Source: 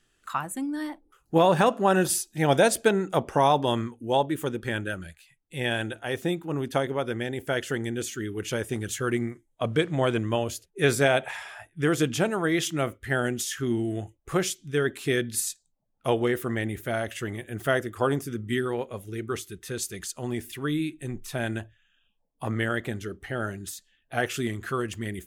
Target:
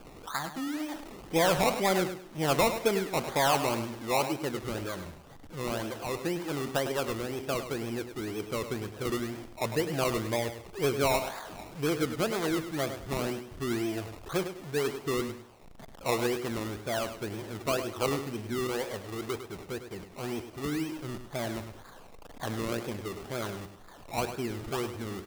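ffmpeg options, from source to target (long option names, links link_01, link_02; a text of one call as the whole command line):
ffmpeg -i in.wav -filter_complex "[0:a]aeval=exprs='val(0)+0.5*0.0251*sgn(val(0))':channel_layout=same,lowpass=1400,asplit=2[link_01][link_02];[link_02]highpass=frequency=720:poles=1,volume=10dB,asoftclip=type=tanh:threshold=-9dB[link_03];[link_01][link_03]amix=inputs=2:normalize=0,lowpass=frequency=1000:poles=1,volume=-6dB,acrusher=samples=22:mix=1:aa=0.000001:lfo=1:lforange=13.2:lforate=2,aecho=1:1:103|206|309:0.316|0.0885|0.0248,volume=-5dB" out.wav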